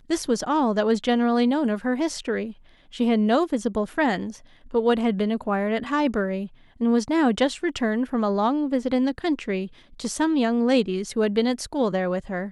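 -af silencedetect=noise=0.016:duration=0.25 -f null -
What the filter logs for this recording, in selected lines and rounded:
silence_start: 2.52
silence_end: 2.94 | silence_duration: 0.42
silence_start: 4.37
silence_end: 4.73 | silence_duration: 0.36
silence_start: 6.47
silence_end: 6.81 | silence_duration: 0.34
silence_start: 9.67
silence_end: 10.00 | silence_duration: 0.32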